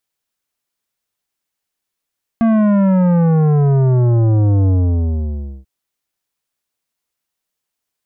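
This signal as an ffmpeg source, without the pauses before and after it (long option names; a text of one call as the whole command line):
ffmpeg -f lavfi -i "aevalsrc='0.282*clip((3.24-t)/0.97,0,1)*tanh(3.98*sin(2*PI*230*3.24/log(65/230)*(exp(log(65/230)*t/3.24)-1)))/tanh(3.98)':duration=3.24:sample_rate=44100" out.wav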